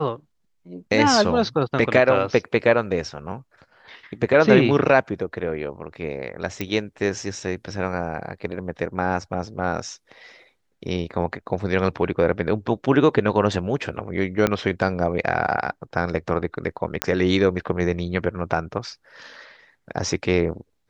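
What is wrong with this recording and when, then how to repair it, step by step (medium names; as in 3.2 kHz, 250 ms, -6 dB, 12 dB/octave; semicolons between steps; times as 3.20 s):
6.61 s: pop -12 dBFS
14.47 s: pop -5 dBFS
17.02 s: pop -2 dBFS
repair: de-click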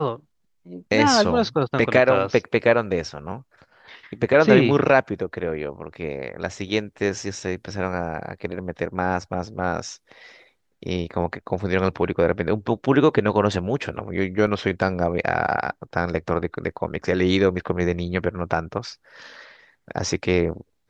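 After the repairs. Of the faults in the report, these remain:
14.47 s: pop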